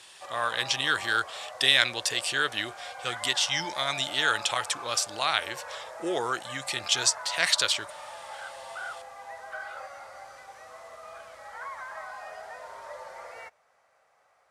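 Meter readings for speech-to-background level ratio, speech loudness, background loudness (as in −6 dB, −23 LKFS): 14.5 dB, −26.5 LKFS, −41.0 LKFS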